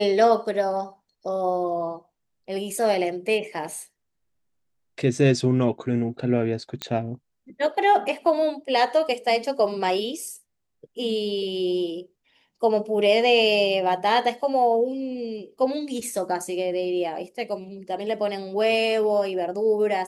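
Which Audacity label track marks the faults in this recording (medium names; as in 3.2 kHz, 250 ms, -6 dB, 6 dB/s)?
6.820000	6.820000	pop -13 dBFS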